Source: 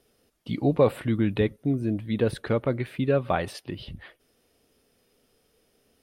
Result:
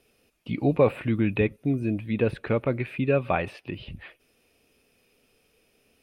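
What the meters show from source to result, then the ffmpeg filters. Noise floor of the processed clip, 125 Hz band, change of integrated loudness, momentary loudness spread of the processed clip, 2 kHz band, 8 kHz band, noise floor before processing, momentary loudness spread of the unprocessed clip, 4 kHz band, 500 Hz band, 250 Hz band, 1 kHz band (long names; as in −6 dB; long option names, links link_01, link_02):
−67 dBFS, 0.0 dB, 0.0 dB, 16 LU, +3.0 dB, below −10 dB, −68 dBFS, 16 LU, −4.0 dB, 0.0 dB, 0.0 dB, 0.0 dB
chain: -filter_complex "[0:a]acrossover=split=2900[link_01][link_02];[link_02]acompressor=threshold=-57dB:ratio=4:attack=1:release=60[link_03];[link_01][link_03]amix=inputs=2:normalize=0,equalizer=frequency=2500:width_type=o:width=0.26:gain=13"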